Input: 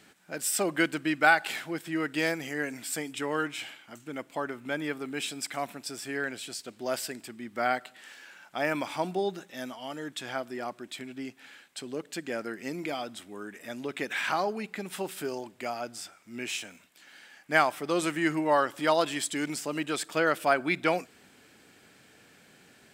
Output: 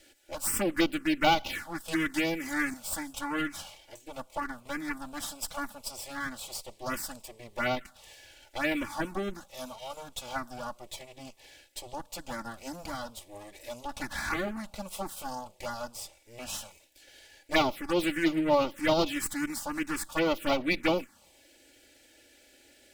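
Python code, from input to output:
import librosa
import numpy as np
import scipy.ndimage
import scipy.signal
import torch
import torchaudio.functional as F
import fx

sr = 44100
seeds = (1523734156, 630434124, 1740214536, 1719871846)

y = fx.lower_of_two(x, sr, delay_ms=3.5)
y = fx.env_phaser(y, sr, low_hz=180.0, high_hz=1700.0, full_db=-22.5)
y = fx.band_squash(y, sr, depth_pct=100, at=(1.88, 2.74))
y = y * 10.0 ** (2.5 / 20.0)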